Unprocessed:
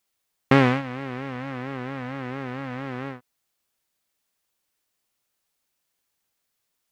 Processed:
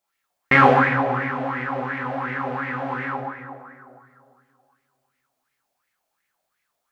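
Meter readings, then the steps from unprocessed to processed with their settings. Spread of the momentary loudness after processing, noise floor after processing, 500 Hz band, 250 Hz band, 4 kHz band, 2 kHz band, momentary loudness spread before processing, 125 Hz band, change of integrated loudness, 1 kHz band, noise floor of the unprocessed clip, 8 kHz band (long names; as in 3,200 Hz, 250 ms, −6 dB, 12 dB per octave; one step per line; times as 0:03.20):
16 LU, −78 dBFS, +4.5 dB, 0.0 dB, 0.0 dB, +9.5 dB, 15 LU, 0.0 dB, +5.5 dB, +10.5 dB, −78 dBFS, can't be measured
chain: dense smooth reverb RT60 2.5 s, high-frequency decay 0.5×, DRR −3.5 dB
auto-filter bell 2.8 Hz 630–2,100 Hz +18 dB
level −6.5 dB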